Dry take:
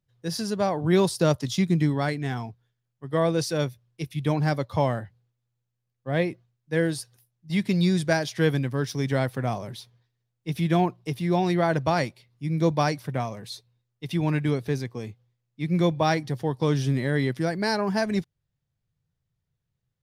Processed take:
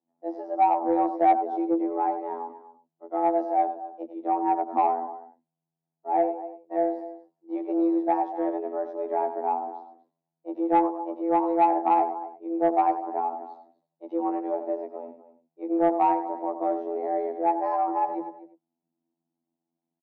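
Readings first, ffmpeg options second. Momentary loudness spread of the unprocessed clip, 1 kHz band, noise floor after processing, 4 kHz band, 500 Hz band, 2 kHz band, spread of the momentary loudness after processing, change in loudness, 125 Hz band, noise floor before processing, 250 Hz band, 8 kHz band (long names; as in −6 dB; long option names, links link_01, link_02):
12 LU, +8.0 dB, below −85 dBFS, below −25 dB, −0.5 dB, −14.0 dB, 15 LU, −0.5 dB, below −30 dB, −81 dBFS, −2.5 dB, below −40 dB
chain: -filter_complex "[0:a]asplit=2[link_01][link_02];[link_02]adelay=244.9,volume=-15dB,highshelf=frequency=4000:gain=-5.51[link_03];[link_01][link_03]amix=inputs=2:normalize=0,afftfilt=real='hypot(re,im)*cos(PI*b)':imag='0':win_size=2048:overlap=0.75,lowpass=frequency=660:width_type=q:width=4.9,afreqshift=160,asplit=2[link_04][link_05];[link_05]aecho=0:1:96:0.316[link_06];[link_04][link_06]amix=inputs=2:normalize=0,acontrast=57,volume=-8.5dB"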